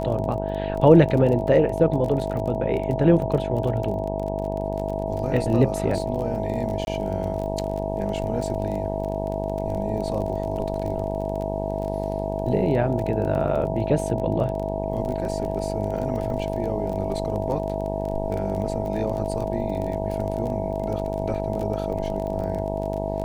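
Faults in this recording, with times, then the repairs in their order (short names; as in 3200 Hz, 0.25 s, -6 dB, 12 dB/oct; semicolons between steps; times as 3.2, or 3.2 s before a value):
buzz 50 Hz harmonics 19 -29 dBFS
crackle 26/s -29 dBFS
tone 650 Hz -30 dBFS
6.85–6.87 gap 21 ms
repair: de-click; notch 650 Hz, Q 30; de-hum 50 Hz, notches 19; interpolate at 6.85, 21 ms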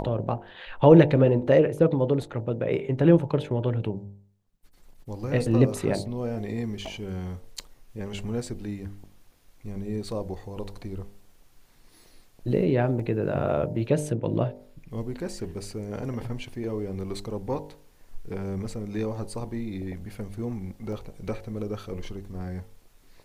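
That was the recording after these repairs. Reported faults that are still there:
none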